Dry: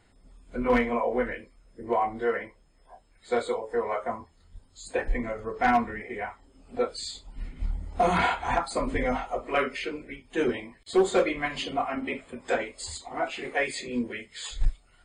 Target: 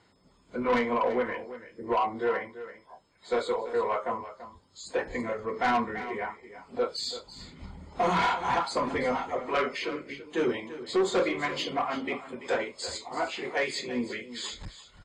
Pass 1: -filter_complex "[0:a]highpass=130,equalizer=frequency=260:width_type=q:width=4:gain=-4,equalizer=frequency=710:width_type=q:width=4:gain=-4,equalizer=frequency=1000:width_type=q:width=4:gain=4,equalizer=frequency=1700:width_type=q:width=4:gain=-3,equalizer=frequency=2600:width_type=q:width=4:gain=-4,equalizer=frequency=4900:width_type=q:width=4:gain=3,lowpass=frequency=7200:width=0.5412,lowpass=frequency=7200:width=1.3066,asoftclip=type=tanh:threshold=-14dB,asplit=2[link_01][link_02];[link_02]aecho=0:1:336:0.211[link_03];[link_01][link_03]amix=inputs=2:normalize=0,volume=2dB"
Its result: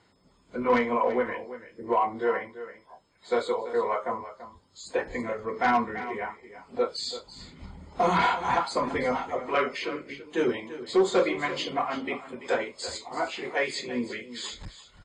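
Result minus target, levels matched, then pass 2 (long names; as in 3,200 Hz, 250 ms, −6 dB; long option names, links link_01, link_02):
soft clipping: distortion −10 dB
-filter_complex "[0:a]highpass=130,equalizer=frequency=260:width_type=q:width=4:gain=-4,equalizer=frequency=710:width_type=q:width=4:gain=-4,equalizer=frequency=1000:width_type=q:width=4:gain=4,equalizer=frequency=1700:width_type=q:width=4:gain=-3,equalizer=frequency=2600:width_type=q:width=4:gain=-4,equalizer=frequency=4900:width_type=q:width=4:gain=3,lowpass=frequency=7200:width=0.5412,lowpass=frequency=7200:width=1.3066,asoftclip=type=tanh:threshold=-21.5dB,asplit=2[link_01][link_02];[link_02]aecho=0:1:336:0.211[link_03];[link_01][link_03]amix=inputs=2:normalize=0,volume=2dB"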